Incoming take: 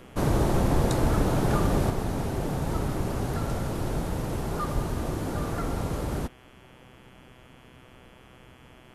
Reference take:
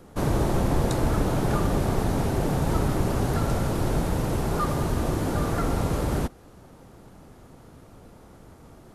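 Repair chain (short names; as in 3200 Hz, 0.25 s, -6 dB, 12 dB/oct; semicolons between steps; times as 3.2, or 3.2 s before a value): de-hum 125.8 Hz, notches 27; 4.74–4.86 HPF 140 Hz 24 dB/oct; gain 0 dB, from 1.9 s +4.5 dB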